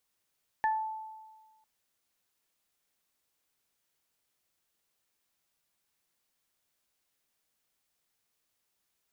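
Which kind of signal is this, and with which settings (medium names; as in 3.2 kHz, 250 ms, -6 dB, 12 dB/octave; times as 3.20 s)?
additive tone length 1.00 s, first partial 875 Hz, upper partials -4.5 dB, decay 1.44 s, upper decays 0.25 s, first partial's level -24 dB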